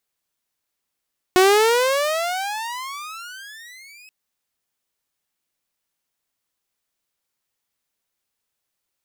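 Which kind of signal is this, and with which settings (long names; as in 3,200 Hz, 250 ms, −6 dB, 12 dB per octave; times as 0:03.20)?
pitch glide with a swell saw, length 2.73 s, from 363 Hz, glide +34 semitones, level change −33 dB, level −8 dB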